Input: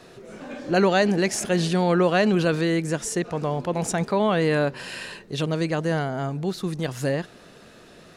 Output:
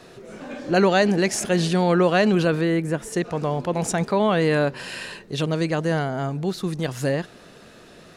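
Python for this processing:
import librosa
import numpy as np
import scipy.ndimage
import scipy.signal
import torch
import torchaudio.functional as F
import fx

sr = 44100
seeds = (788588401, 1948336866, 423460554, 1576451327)

y = fx.peak_eq(x, sr, hz=5800.0, db=fx.line((2.45, -6.5), (3.12, -14.0)), octaves=1.6, at=(2.45, 3.12), fade=0.02)
y = y * 10.0 ** (1.5 / 20.0)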